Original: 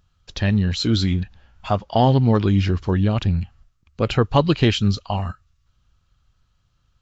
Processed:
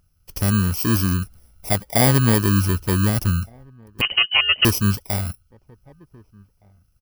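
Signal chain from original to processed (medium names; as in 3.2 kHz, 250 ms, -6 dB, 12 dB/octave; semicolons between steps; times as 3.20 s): bit-reversed sample order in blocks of 32 samples; echo from a far wall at 260 m, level -29 dB; 4.01–4.65 s: frequency inversion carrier 3 kHz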